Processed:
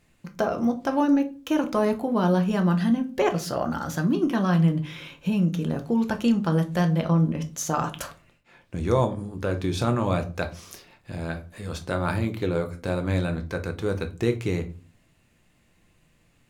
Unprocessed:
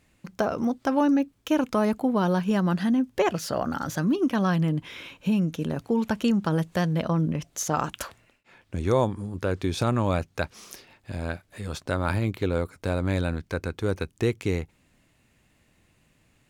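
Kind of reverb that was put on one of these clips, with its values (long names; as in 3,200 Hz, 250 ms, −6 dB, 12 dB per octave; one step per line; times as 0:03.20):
rectangular room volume 200 cubic metres, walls furnished, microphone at 0.83 metres
level −1 dB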